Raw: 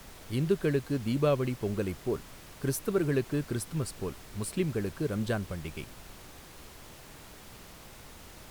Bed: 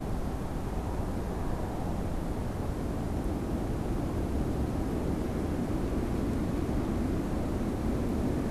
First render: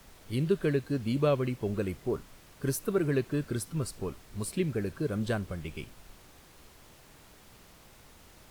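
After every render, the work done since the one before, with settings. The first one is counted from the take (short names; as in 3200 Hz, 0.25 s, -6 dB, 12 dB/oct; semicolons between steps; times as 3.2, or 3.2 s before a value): noise print and reduce 6 dB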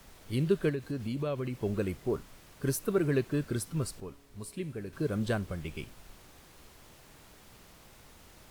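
0.69–1.57 compressor 3:1, threshold -31 dBFS; 4–4.93 resonator 140 Hz, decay 1.7 s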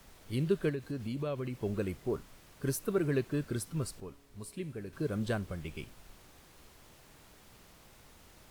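gain -2.5 dB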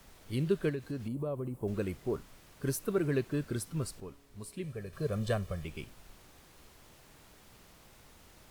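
1.08–1.68 band shelf 3100 Hz -15.5 dB 2.4 oct; 4.64–5.65 comb 1.7 ms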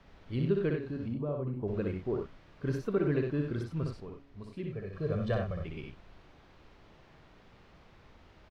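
air absorption 240 m; loudspeakers at several distances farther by 21 m -4 dB, 32 m -8 dB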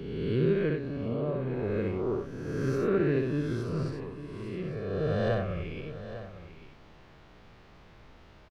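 spectral swells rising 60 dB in 1.59 s; echo 0.851 s -13 dB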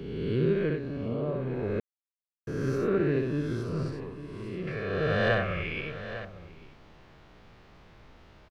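1.8–2.47 mute; 4.67–6.25 bell 2100 Hz +13 dB 1.8 oct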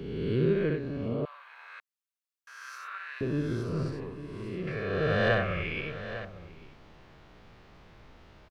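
1.25–3.21 steep high-pass 1000 Hz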